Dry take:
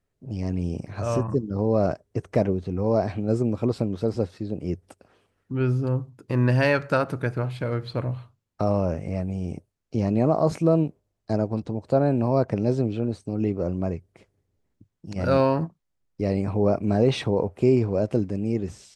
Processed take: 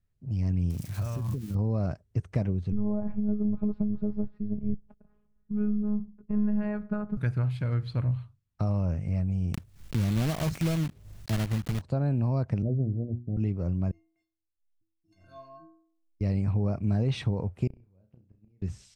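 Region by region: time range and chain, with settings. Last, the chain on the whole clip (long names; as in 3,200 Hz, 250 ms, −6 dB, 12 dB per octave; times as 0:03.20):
0:00.70–0:01.55: spike at every zero crossing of −27.5 dBFS + downward compressor 10 to 1, threshold −25 dBFS
0:02.72–0:07.17: low-pass filter 1,000 Hz + low-shelf EQ 230 Hz +9.5 dB + phases set to zero 209 Hz
0:09.54–0:11.83: one scale factor per block 3 bits + upward compression, threshold −22 dBFS
0:12.62–0:13.37: Butterworth low-pass 740 Hz 96 dB per octave + mains-hum notches 60/120/180/240/300/360 Hz
0:13.91–0:16.21: mains-hum notches 50/100/150/200/250 Hz + stiff-string resonator 320 Hz, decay 0.67 s, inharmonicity 0.03
0:17.67–0:18.62: gate with flip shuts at −18 dBFS, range −36 dB + high-frequency loss of the air 160 metres + flutter between parallel walls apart 5.6 metres, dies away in 0.3 s
whole clip: parametric band 420 Hz −8.5 dB 2.6 octaves; downward compressor, threshold −24 dBFS; bass and treble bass +10 dB, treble −3 dB; level −4.5 dB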